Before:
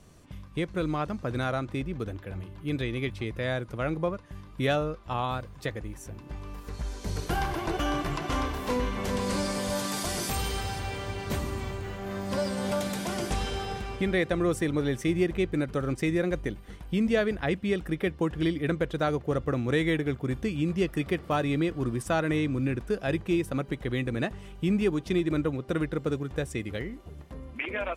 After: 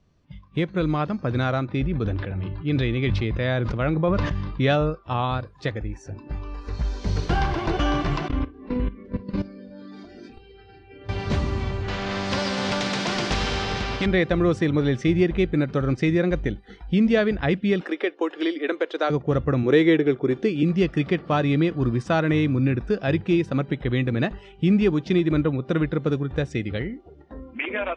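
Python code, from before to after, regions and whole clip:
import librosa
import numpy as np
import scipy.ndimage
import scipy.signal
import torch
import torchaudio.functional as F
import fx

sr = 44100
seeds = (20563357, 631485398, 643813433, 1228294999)

y = fx.chain(x, sr, fx.lowpass(hz=6900.0, slope=12),
    fx.sustainer(db_per_s=32.0), at=(1.67, 4.9))
y = fx.chain(y, sr, fx.curve_eq(hz=(210.0, 300.0, 770.0, 2600.0, 9900.0), db=(0, 1, -11, -8, -24)),
    fx.level_steps(step_db=15), at=(8.28, 11.09))
y = fx.chain(y, sr, fx.high_shelf(hz=6800.0, db=-12.0),
    fx.spectral_comp(ratio=2.0), at=(11.88, 14.06))
y = fx.chain(y, sr, fx.highpass(hz=330.0, slope=24),
    fx.band_squash(depth_pct=40), at=(17.81, 19.1))
y = fx.chain(y, sr, fx.highpass(hz=280.0, slope=6),
    fx.peak_eq(hz=380.0, db=10.5, octaves=0.71), at=(19.63, 20.63))
y = scipy.signal.sosfilt(scipy.signal.butter(4, 5400.0, 'lowpass', fs=sr, output='sos'), y)
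y = fx.noise_reduce_blind(y, sr, reduce_db=16)
y = fx.bass_treble(y, sr, bass_db=4, treble_db=1)
y = y * librosa.db_to_amplitude(4.5)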